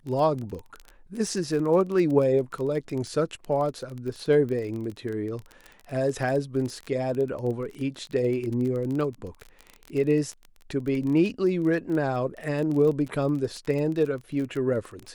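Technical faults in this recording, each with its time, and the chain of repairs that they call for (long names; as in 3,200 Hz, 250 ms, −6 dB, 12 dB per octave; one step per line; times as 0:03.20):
surface crackle 22 per second −30 dBFS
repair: click removal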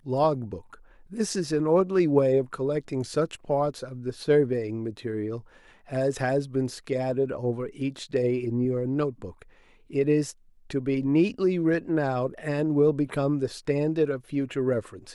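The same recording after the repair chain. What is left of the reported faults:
none of them is left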